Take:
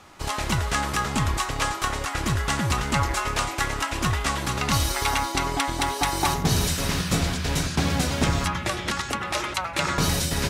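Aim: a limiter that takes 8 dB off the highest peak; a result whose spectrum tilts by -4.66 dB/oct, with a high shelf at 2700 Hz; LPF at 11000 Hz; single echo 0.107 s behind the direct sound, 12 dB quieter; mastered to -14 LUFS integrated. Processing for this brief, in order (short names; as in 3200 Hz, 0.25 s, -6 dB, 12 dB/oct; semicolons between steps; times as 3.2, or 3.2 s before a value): LPF 11000 Hz; high shelf 2700 Hz -6.5 dB; limiter -17.5 dBFS; echo 0.107 s -12 dB; gain +14 dB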